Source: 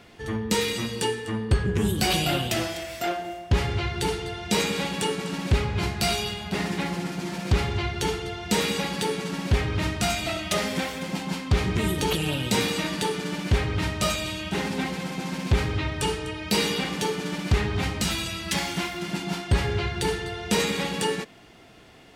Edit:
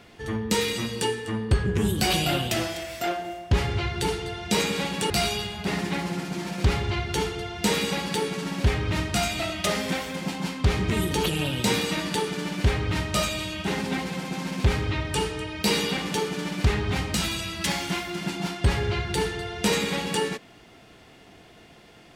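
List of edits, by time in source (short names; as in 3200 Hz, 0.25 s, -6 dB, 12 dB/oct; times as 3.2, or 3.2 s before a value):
5.1–5.97 cut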